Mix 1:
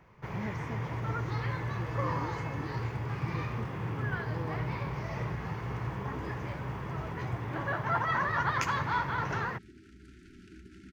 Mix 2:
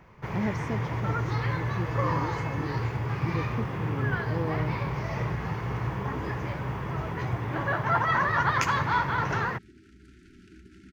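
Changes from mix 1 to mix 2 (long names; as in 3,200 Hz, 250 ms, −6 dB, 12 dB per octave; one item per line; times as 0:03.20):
speech +9.5 dB
first sound +5.0 dB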